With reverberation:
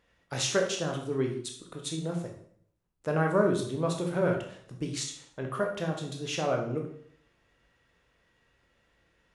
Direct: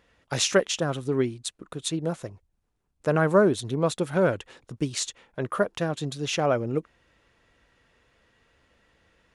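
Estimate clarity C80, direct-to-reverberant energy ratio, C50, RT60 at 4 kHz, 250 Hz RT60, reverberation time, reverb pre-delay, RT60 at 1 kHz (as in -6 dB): 10.0 dB, 1.5 dB, 6.5 dB, 0.55 s, 0.70 s, 0.60 s, 16 ms, 0.60 s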